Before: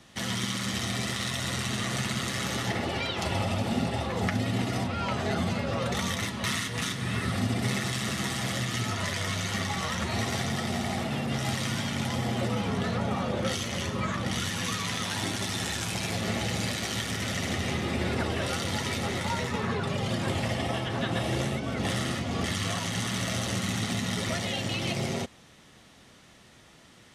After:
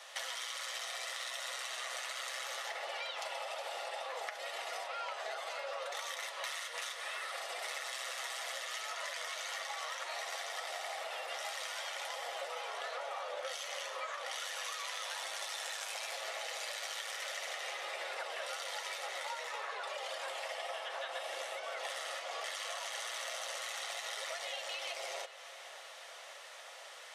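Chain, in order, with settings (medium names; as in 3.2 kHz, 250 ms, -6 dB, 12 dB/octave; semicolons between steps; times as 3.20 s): elliptic high-pass 540 Hz, stop band 60 dB; compression 6:1, threshold -45 dBFS, peak gain reduction 17.5 dB; filtered feedback delay 561 ms, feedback 83%, low-pass 4.8 kHz, level -16 dB; trim +5.5 dB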